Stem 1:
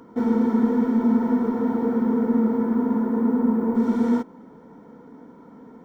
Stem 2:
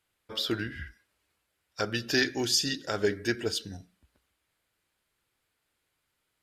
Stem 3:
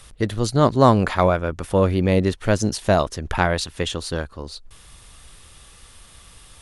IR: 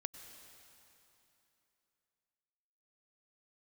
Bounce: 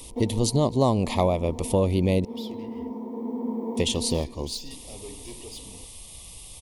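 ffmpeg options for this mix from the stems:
-filter_complex "[0:a]highpass=270,volume=0.531,asplit=2[s0][s1];[s1]volume=0.501[s2];[1:a]asoftclip=type=tanh:threshold=0.0335,adelay=2000,volume=0.422[s3];[2:a]highshelf=f=8200:g=10,volume=1.06,asplit=3[s4][s5][s6];[s4]atrim=end=2.25,asetpts=PTS-STARTPTS,afade=t=out:st=2.246:d=0.004:c=hsin[s7];[s5]atrim=start=2.25:end=3.77,asetpts=PTS-STARTPTS,volume=0[s8];[s6]atrim=start=3.77,asetpts=PTS-STARTPTS,afade=t=in:d=0.004:c=hsin[s9];[s7][s8][s9]concat=n=3:v=0:a=1,asplit=3[s10][s11][s12];[s11]volume=0.0668[s13];[s12]apad=whole_len=257882[s14];[s0][s14]sidechaincompress=threshold=0.0447:ratio=8:attack=9:release=1490[s15];[3:a]atrim=start_sample=2205[s16];[s2][s13]amix=inputs=2:normalize=0[s17];[s17][s16]afir=irnorm=-1:irlink=0[s18];[s15][s3][s10][s18]amix=inputs=4:normalize=0,asuperstop=centerf=1500:order=4:qfactor=1.2,acompressor=threshold=0.112:ratio=3"

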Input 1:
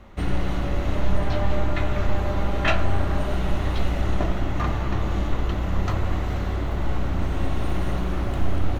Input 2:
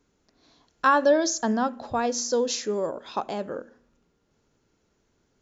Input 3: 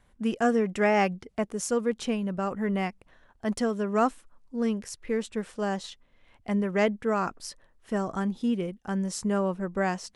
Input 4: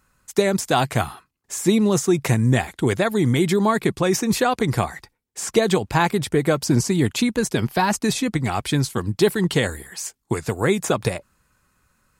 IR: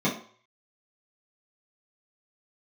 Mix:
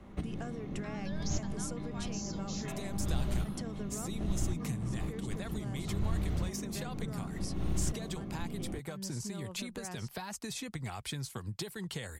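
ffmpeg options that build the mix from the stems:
-filter_complex "[0:a]equalizer=f=200:w=0.42:g=7.5,volume=0.316,asplit=2[s0][s1];[s1]volume=0.075[s2];[1:a]highpass=1300,alimiter=limit=0.0708:level=0:latency=1,volume=0.398[s3];[2:a]alimiter=limit=0.0891:level=0:latency=1,volume=0.562,asplit=2[s4][s5];[3:a]equalizer=f=300:w=1.7:g=-6.5,adelay=2400,volume=0.398[s6];[s5]apad=whole_len=387759[s7];[s0][s7]sidechaincompress=threshold=0.00316:ratio=8:attack=7.8:release=175[s8];[s3][s4][s6]amix=inputs=3:normalize=0,acompressor=threshold=0.02:ratio=6,volume=1[s9];[4:a]atrim=start_sample=2205[s10];[s2][s10]afir=irnorm=-1:irlink=0[s11];[s8][s9][s11]amix=inputs=3:normalize=0,acrossover=split=140|3000[s12][s13][s14];[s13]acompressor=threshold=0.0112:ratio=6[s15];[s12][s15][s14]amix=inputs=3:normalize=0"

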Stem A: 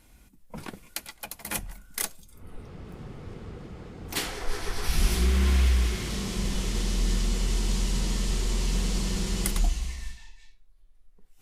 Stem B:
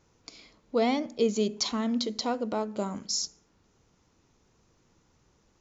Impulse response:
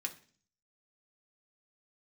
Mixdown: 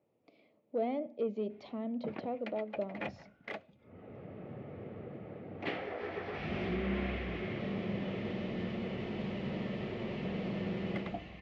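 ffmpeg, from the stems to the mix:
-filter_complex "[0:a]adelay=1500,volume=0.794[s0];[1:a]highpass=f=140:p=1,equalizer=f=1600:w=1.4:g=-9.5,asoftclip=type=tanh:threshold=0.112,volume=0.447[s1];[s0][s1]amix=inputs=2:normalize=0,highpass=f=110:w=0.5412,highpass=f=110:w=1.3066,equalizer=f=160:t=q:w=4:g=-4,equalizer=f=600:t=q:w=4:g=9,equalizer=f=1000:t=q:w=4:g=-8,equalizer=f=1500:t=q:w=4:g=-7,lowpass=f=2400:w=0.5412,lowpass=f=2400:w=1.3066"

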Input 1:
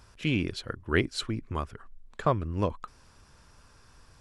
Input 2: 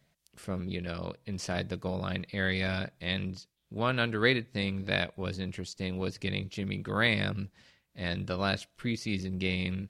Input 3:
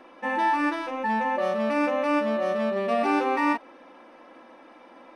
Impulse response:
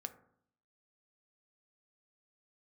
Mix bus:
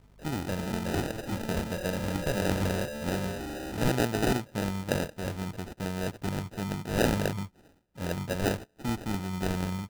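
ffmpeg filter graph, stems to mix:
-filter_complex "[0:a]aeval=exprs='val(0)+0.00355*(sin(2*PI*50*n/s)+sin(2*PI*2*50*n/s)/2+sin(2*PI*3*50*n/s)/3+sin(2*PI*4*50*n/s)/4+sin(2*PI*5*50*n/s)/5)':c=same,volume=0.501[s0];[1:a]equalizer=f=1300:t=o:w=0.41:g=5.5,volume=1.12[s1];[2:a]asoftclip=type=tanh:threshold=0.0422,adelay=350,volume=0.447[s2];[s0][s1][s2]amix=inputs=3:normalize=0,acrusher=samples=40:mix=1:aa=0.000001"

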